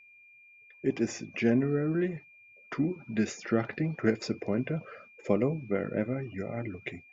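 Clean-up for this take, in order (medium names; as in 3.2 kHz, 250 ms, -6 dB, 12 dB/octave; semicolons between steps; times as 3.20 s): band-stop 2.4 kHz, Q 30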